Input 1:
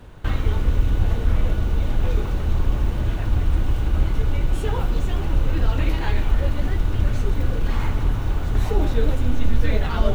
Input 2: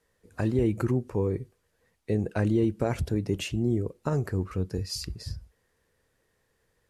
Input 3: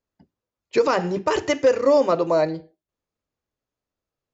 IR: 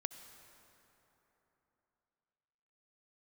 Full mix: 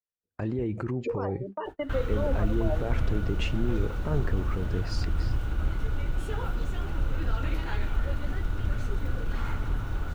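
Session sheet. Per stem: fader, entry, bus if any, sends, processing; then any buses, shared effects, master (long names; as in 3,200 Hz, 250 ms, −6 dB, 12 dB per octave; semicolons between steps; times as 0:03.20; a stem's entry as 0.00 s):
−8.5 dB, 1.65 s, no bus, no send, parametric band 1,400 Hz +10.5 dB 0.22 octaves
+3.0 dB, 0.00 s, bus A, no send, low-pass filter 7,500 Hz; bass and treble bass −1 dB, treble −13 dB
+3.0 dB, 0.30 s, bus A, no send, gate on every frequency bin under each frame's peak −20 dB strong; Chebyshev high-pass with heavy ripple 190 Hz, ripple 9 dB; automatic ducking −9 dB, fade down 1.70 s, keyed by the second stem
bus A: 0.0 dB, brickwall limiter −22 dBFS, peak gain reduction 11 dB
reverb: not used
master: noise gate −37 dBFS, range −38 dB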